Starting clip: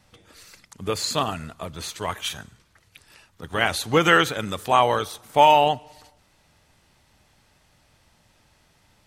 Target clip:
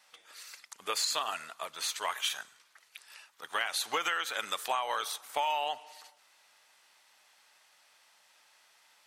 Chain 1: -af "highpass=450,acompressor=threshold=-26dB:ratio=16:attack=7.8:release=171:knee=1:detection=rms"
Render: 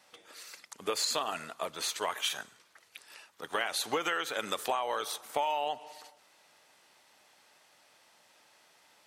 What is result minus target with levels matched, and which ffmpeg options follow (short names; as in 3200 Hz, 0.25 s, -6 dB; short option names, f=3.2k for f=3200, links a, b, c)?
500 Hz band +5.0 dB
-af "highpass=920,acompressor=threshold=-26dB:ratio=16:attack=7.8:release=171:knee=1:detection=rms"